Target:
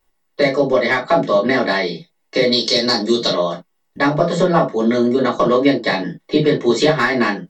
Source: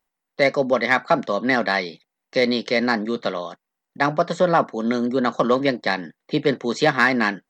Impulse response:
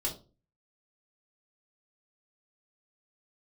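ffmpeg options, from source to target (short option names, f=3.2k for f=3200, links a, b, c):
-filter_complex "[0:a]asettb=1/sr,asplit=3[a][b][c];[a]atrim=end=2.524[d];[b]atrim=start=2.52:end=3.3,asetpts=PTS-STARTPTS,afade=t=in:d=0.004:c=qsin,afade=t=out:st=0.776:d=0.004:c=qsin,highshelf=f=3.3k:t=q:w=1.5:g=12[e];[c]atrim=start=3.296[f];[d][e]acrossfade=d=0.004:c1=hsin:c2=qsin[g];[g][f]acrossfade=d=0.004:c1=qsin:c2=hsin,acompressor=threshold=-22dB:ratio=4[h];[1:a]atrim=start_sample=2205,atrim=end_sample=3528[i];[h][i]afir=irnorm=-1:irlink=0,volume=6dB"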